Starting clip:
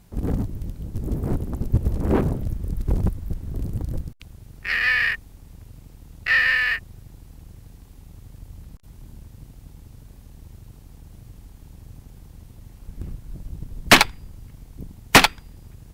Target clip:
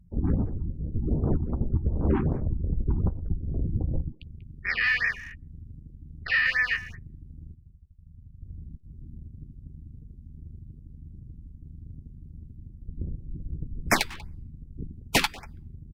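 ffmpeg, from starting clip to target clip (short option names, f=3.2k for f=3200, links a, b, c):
-filter_complex "[0:a]asettb=1/sr,asplit=3[a][b][c];[a]atrim=end=7.544[d];[b]atrim=start=7.54:end=8.46,asetpts=PTS-STARTPTS,afade=t=in:d=0.004:c=qsin,afade=t=out:st=0.916:d=0.004:c=qsin,agate=range=-33dB:threshold=-36dB:ratio=3:detection=peak[e];[c]atrim=start=8.456[f];[d][e]acrossfade=d=0.004:c1=hsin:c2=qsin[g];[g][f]acrossfade=d=0.004:c1=qsin:c2=hsin,afftdn=nr=33:nf=-44,alimiter=limit=-14.5dB:level=0:latency=1:release=268,asplit=2[h][i];[i]adelay=13,volume=-12.5dB[j];[h][j]amix=inputs=2:normalize=0,asplit=2[k][l];[l]adelay=190,highpass=300,lowpass=3.4k,asoftclip=type=hard:threshold=-21.5dB,volume=-16dB[m];[k][m]amix=inputs=2:normalize=0,afftfilt=real='re*(1-between(b*sr/1024,500*pow(3600/500,0.5+0.5*sin(2*PI*2.6*pts/sr))/1.41,500*pow(3600/500,0.5+0.5*sin(2*PI*2.6*pts/sr))*1.41))':imag='im*(1-between(b*sr/1024,500*pow(3600/500,0.5+0.5*sin(2*PI*2.6*pts/sr))/1.41,500*pow(3600/500,0.5+0.5*sin(2*PI*2.6*pts/sr))*1.41))':win_size=1024:overlap=0.75"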